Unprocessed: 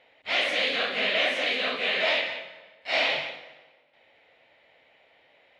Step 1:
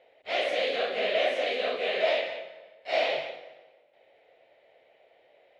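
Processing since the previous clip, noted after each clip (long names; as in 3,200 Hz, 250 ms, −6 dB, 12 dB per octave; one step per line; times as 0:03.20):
flat-topped bell 510 Hz +10.5 dB 1.3 octaves
level −6.5 dB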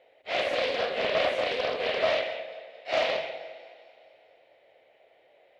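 feedback echo with a high-pass in the loop 221 ms, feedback 58%, level −18.5 dB
convolution reverb RT60 2.7 s, pre-delay 4 ms, DRR 13 dB
highs frequency-modulated by the lows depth 0.26 ms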